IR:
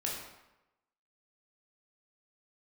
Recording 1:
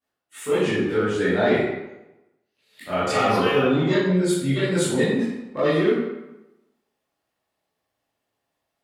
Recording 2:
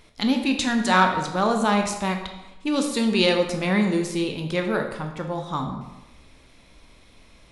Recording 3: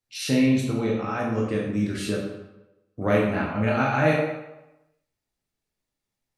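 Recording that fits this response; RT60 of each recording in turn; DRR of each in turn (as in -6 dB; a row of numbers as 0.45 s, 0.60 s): 3; 0.95 s, 0.95 s, 0.95 s; -13.0 dB, 3.5 dB, -3.5 dB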